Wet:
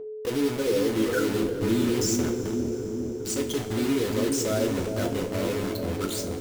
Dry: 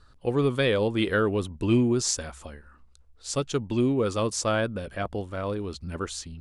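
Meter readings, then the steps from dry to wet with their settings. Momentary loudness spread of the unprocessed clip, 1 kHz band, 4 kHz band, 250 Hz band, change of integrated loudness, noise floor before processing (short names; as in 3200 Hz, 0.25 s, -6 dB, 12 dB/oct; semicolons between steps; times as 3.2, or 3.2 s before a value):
11 LU, -3.0 dB, 0.0 dB, +2.0 dB, 0.0 dB, -57 dBFS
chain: formant sharpening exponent 3; bell 9200 Hz +11 dB 0.27 oct; in parallel at +2 dB: level quantiser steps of 22 dB; on the sum: limiter -16 dBFS, peak gain reduction 8.5 dB; bit-crush 5-bit; whine 430 Hz -30 dBFS; on a send: dark delay 0.406 s, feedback 71%, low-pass 480 Hz, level -3 dB; on the sum: two-slope reverb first 0.3 s, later 4.6 s, from -18 dB, DRR 2 dB; gain -4.5 dB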